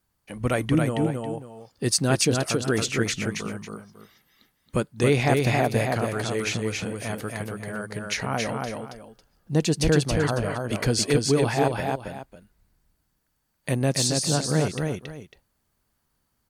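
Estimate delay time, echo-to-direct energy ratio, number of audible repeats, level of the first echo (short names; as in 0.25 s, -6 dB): 0.275 s, -3.0 dB, 2, -3.5 dB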